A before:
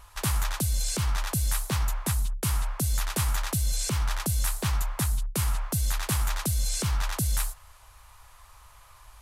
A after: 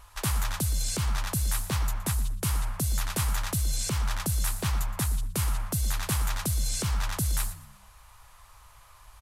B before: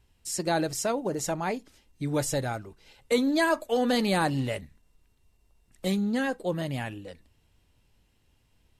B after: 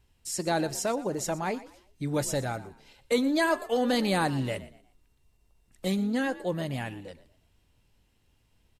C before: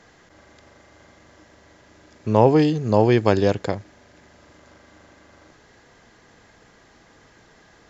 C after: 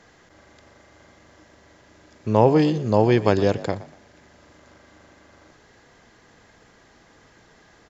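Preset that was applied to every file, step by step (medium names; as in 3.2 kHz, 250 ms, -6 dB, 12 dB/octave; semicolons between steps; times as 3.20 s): frequency-shifting echo 119 ms, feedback 31%, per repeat +53 Hz, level -17.5 dB; trim -1 dB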